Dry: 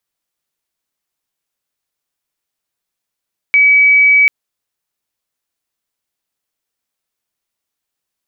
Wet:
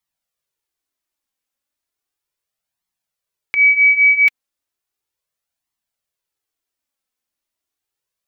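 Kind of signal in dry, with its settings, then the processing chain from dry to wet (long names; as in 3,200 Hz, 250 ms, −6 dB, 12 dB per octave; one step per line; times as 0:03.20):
tone sine 2,280 Hz −5.5 dBFS 0.74 s
flanger 0.35 Hz, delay 0.9 ms, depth 3.1 ms, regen −20%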